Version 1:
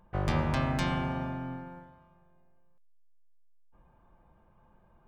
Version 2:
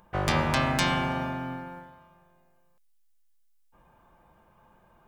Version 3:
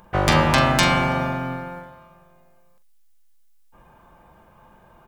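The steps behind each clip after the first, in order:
tilt +2 dB/oct; gain +6.5 dB
doubler 44 ms -11 dB; gain +8 dB

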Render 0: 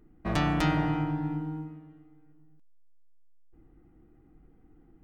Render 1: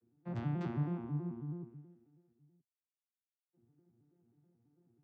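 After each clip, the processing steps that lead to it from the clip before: arpeggiated vocoder major triad, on A#2, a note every 0.108 s; gain -8.5 dB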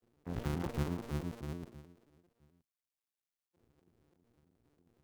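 cycle switcher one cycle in 2, muted; gain +3 dB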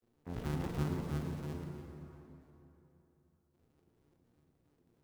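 plate-style reverb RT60 3.4 s, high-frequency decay 0.6×, DRR 2.5 dB; gain -2.5 dB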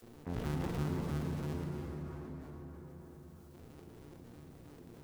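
fast leveller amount 50%; gain -2 dB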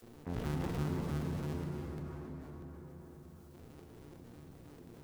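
crackling interface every 0.63 s repeat, from 0.71

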